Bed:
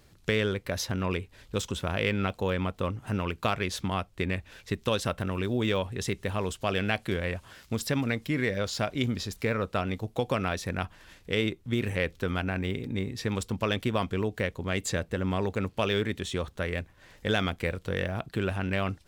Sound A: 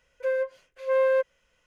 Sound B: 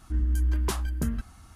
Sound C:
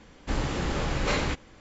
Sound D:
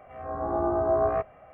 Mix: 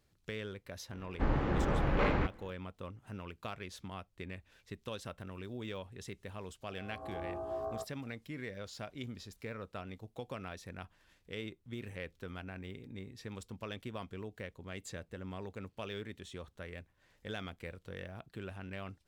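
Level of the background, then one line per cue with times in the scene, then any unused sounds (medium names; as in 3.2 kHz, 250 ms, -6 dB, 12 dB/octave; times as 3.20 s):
bed -15 dB
0.92 s: add C -2 dB + low-pass 1.7 kHz
6.62 s: add D -15 dB + Chebyshev low-pass 1.1 kHz
not used: A, B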